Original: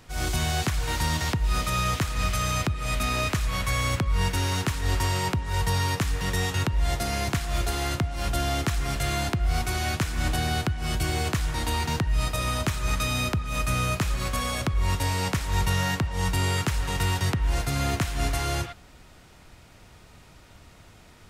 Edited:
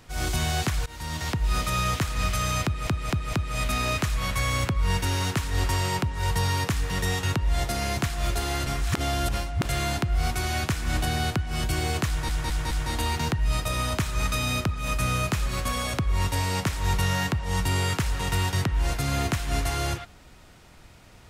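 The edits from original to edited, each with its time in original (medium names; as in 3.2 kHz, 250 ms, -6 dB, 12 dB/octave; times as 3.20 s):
0.86–1.43 s: fade in, from -21.5 dB
2.64 s: stutter 0.23 s, 4 plays
7.97–8.96 s: reverse
11.39 s: stutter 0.21 s, 4 plays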